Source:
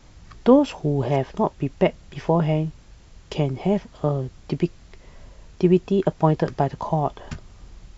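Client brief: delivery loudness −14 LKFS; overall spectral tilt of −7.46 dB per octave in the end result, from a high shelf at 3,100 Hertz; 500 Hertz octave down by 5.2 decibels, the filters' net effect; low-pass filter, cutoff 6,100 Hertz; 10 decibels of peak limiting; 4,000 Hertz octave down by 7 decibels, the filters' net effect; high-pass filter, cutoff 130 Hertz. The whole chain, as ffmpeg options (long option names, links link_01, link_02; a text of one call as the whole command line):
ffmpeg -i in.wav -af "highpass=130,lowpass=6100,equalizer=frequency=500:width_type=o:gain=-6.5,highshelf=frequency=3100:gain=-6.5,equalizer=frequency=4000:width_type=o:gain=-5,volume=15.5dB,alimiter=limit=-0.5dB:level=0:latency=1" out.wav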